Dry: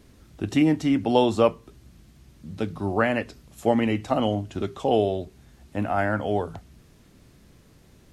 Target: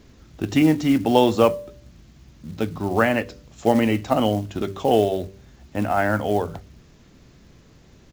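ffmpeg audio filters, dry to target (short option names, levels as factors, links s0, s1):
-af "bandreject=f=97.62:t=h:w=4,bandreject=f=195.24:t=h:w=4,bandreject=f=292.86:t=h:w=4,bandreject=f=390.48:t=h:w=4,bandreject=f=488.1:t=h:w=4,bandreject=f=585.72:t=h:w=4,aresample=16000,aresample=44100,acrusher=bits=6:mode=log:mix=0:aa=0.000001,volume=1.5"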